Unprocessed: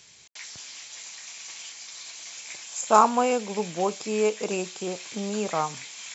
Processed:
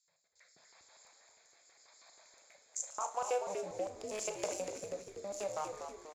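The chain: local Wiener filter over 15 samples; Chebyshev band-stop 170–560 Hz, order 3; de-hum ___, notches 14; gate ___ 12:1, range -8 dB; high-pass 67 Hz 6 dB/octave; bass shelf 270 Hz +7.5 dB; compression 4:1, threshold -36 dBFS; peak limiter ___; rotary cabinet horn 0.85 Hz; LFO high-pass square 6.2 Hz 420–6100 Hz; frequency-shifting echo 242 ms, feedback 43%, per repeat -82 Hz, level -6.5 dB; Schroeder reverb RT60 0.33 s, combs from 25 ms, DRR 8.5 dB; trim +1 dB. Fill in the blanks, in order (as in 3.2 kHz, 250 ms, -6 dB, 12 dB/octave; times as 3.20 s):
121.7 Hz, -47 dBFS, -27.5 dBFS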